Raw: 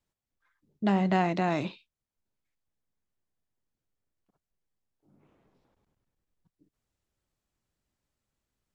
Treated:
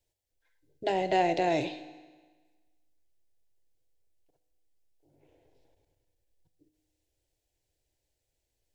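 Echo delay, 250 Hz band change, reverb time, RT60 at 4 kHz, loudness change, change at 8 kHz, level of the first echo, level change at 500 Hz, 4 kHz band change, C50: no echo, -6.0 dB, 1.4 s, 1.3 s, -1.0 dB, no reading, no echo, +3.5 dB, +3.5 dB, 13.0 dB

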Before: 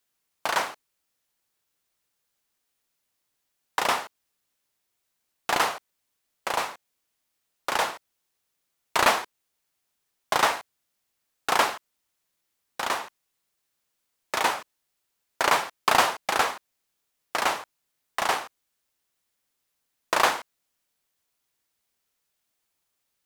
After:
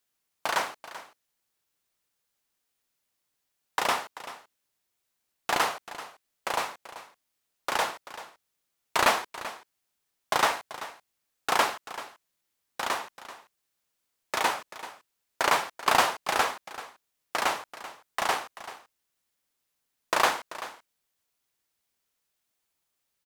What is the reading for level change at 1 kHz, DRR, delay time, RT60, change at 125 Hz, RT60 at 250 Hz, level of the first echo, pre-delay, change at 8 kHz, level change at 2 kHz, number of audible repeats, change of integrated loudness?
-2.0 dB, no reverb, 386 ms, no reverb, -2.0 dB, no reverb, -15.0 dB, no reverb, -2.0 dB, -2.0 dB, 1, -2.5 dB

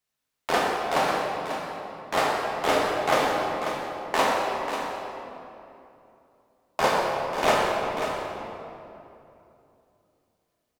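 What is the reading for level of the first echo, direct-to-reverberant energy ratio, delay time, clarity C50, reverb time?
-9.0 dB, -4.5 dB, 541 ms, -1.5 dB, 2.9 s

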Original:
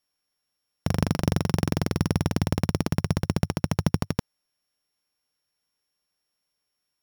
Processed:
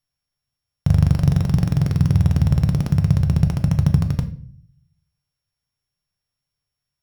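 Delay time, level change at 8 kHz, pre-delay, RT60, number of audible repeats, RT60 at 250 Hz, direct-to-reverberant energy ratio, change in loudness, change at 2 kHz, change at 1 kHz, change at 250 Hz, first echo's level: no echo, no reading, 7 ms, 0.55 s, no echo, 0.75 s, 7.0 dB, +8.0 dB, -3.0 dB, -3.0 dB, +5.0 dB, no echo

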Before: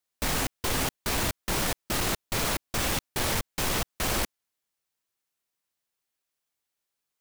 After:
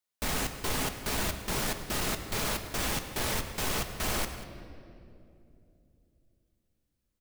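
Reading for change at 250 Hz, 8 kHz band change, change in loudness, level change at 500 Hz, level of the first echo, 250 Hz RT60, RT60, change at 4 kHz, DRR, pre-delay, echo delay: -3.0 dB, -3.5 dB, -3.5 dB, -3.0 dB, -19.0 dB, 4.1 s, 2.8 s, -3.5 dB, 6.5 dB, 5 ms, 106 ms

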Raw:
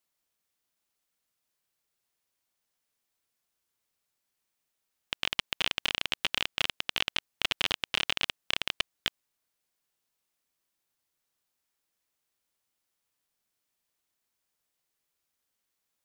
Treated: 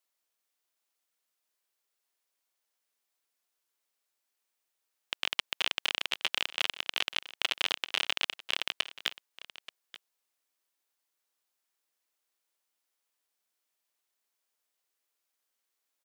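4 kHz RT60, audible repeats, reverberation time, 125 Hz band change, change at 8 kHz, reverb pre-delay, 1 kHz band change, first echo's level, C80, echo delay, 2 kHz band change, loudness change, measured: no reverb, 1, no reverb, under -15 dB, -1.0 dB, no reverb, -1.0 dB, -17.0 dB, no reverb, 881 ms, -1.0 dB, -1.0 dB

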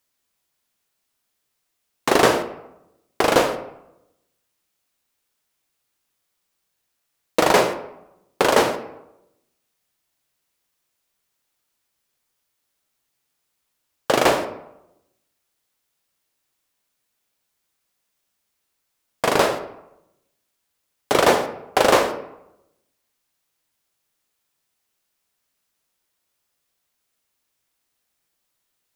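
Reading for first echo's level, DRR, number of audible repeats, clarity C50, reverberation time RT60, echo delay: no echo, 8.0 dB, no echo, 11.5 dB, 0.85 s, no echo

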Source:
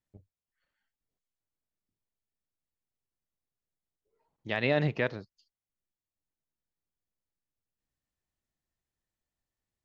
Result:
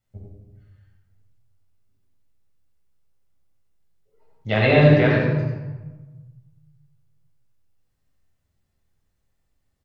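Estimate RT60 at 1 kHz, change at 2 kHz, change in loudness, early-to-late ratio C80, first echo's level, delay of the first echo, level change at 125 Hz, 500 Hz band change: 1.2 s, +10.5 dB, +12.0 dB, 1.0 dB, -4.0 dB, 91 ms, +17.0 dB, +13.0 dB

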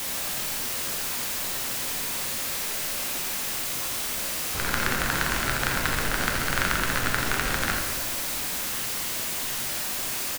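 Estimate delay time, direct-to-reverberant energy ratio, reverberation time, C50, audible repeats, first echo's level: 84 ms, 0.0 dB, 1.4 s, 3.0 dB, 1, -8.5 dB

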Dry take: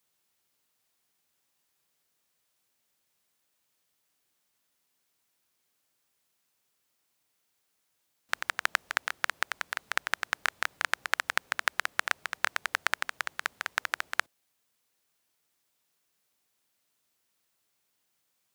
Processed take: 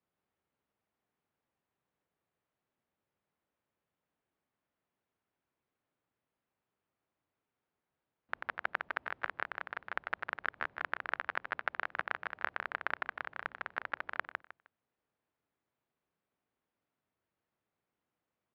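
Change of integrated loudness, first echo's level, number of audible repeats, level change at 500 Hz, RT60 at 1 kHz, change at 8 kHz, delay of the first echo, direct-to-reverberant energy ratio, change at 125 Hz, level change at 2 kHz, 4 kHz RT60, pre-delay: -7.5 dB, -5.0 dB, 3, -1.5 dB, no reverb, under -35 dB, 155 ms, no reverb, no reading, -7.0 dB, no reverb, no reverb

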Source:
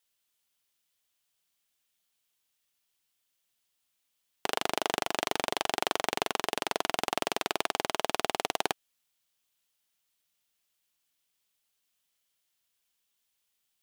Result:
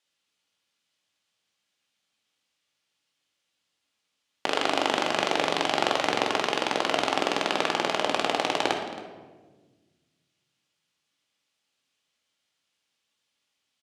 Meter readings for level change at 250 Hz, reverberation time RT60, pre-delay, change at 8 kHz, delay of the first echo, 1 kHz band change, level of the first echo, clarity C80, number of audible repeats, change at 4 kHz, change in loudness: +8.0 dB, 1.4 s, 3 ms, -0.5 dB, 272 ms, +5.5 dB, -17.0 dB, 7.5 dB, 1, +5.0 dB, +5.5 dB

